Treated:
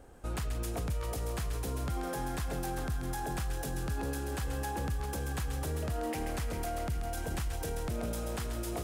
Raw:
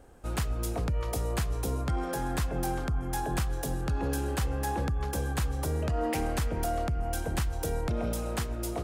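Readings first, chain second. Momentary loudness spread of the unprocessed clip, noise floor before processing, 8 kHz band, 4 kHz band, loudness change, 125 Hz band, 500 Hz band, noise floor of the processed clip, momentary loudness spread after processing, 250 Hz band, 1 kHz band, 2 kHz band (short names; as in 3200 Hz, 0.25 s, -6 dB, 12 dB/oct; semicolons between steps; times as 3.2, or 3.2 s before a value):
2 LU, -35 dBFS, -3.5 dB, -3.5 dB, -4.5 dB, -4.5 dB, -4.5 dB, -37 dBFS, 1 LU, -4.5 dB, -4.5 dB, -3.5 dB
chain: limiter -28 dBFS, peak gain reduction 7 dB; thin delay 0.134 s, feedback 80%, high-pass 1600 Hz, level -6 dB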